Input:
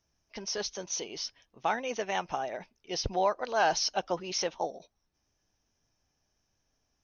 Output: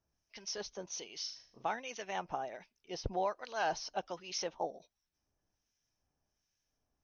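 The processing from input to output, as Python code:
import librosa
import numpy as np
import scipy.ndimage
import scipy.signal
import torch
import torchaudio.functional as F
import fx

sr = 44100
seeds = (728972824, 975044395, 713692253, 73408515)

y = fx.harmonic_tremolo(x, sr, hz=1.3, depth_pct=70, crossover_hz=1500.0)
y = fx.room_flutter(y, sr, wall_m=6.5, rt60_s=0.47, at=(1.22, 1.67))
y = F.gain(torch.from_numpy(y), -4.0).numpy()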